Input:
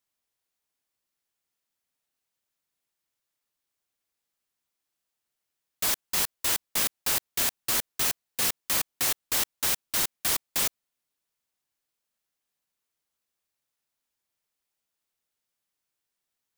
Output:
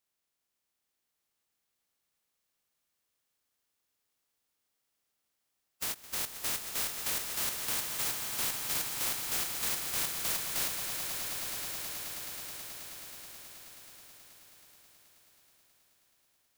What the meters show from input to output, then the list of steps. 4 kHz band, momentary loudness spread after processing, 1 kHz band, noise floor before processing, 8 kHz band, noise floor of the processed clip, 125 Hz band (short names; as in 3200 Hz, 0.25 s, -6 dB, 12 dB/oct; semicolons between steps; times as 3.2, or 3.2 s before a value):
-5.0 dB, 15 LU, -5.0 dB, -85 dBFS, -5.0 dB, -83 dBFS, -4.0 dB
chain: spectral limiter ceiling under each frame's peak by 29 dB; limiter -23.5 dBFS, peak gain reduction 10.5 dB; swelling echo 0.107 s, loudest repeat 8, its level -11 dB; ending taper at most 430 dB/s